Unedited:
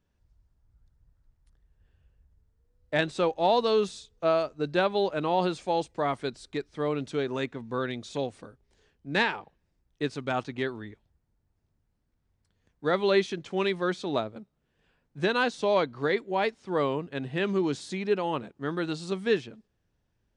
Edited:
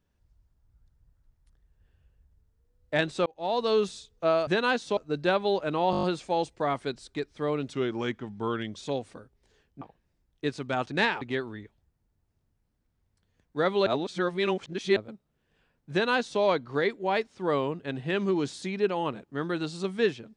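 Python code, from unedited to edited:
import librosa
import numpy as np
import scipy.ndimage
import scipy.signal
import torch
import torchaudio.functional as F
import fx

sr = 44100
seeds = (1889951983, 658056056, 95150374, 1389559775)

y = fx.edit(x, sr, fx.fade_in_span(start_s=3.26, length_s=0.47),
    fx.stutter(start_s=5.41, slice_s=0.02, count=7),
    fx.speed_span(start_s=7.11, length_s=0.94, speed=0.9),
    fx.move(start_s=9.09, length_s=0.3, to_s=10.49),
    fx.reverse_span(start_s=13.14, length_s=1.1),
    fx.duplicate(start_s=15.19, length_s=0.5, to_s=4.47), tone=tone)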